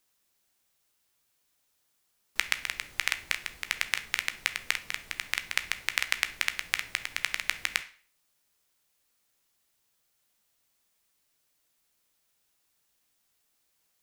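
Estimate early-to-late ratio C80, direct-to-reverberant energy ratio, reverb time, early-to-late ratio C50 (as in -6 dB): 19.5 dB, 9.5 dB, 0.45 s, 15.0 dB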